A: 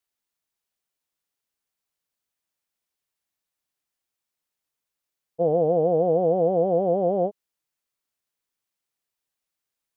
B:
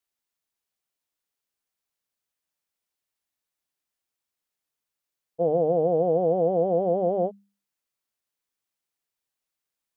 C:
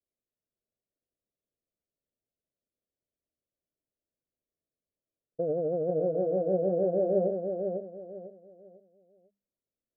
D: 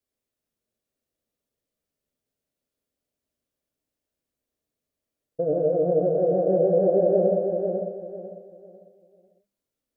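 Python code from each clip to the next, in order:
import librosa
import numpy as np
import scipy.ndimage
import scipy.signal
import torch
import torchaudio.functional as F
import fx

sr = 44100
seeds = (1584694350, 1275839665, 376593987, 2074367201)

y1 = fx.hum_notches(x, sr, base_hz=50, count=4)
y1 = F.gain(torch.from_numpy(y1), -1.5).numpy()
y2 = scipy.signal.sosfilt(scipy.signal.butter(12, 660.0, 'lowpass', fs=sr, output='sos'), y1)
y2 = fx.over_compress(y2, sr, threshold_db=-27.0, ratio=-1.0)
y2 = fx.echo_feedback(y2, sr, ms=498, feedback_pct=29, wet_db=-5)
y2 = F.gain(torch.from_numpy(y2), -1.5).numpy()
y3 = fx.rev_gated(y2, sr, seeds[0], gate_ms=170, shape='flat', drr_db=1.5)
y3 = F.gain(torch.from_numpy(y3), 5.0).numpy()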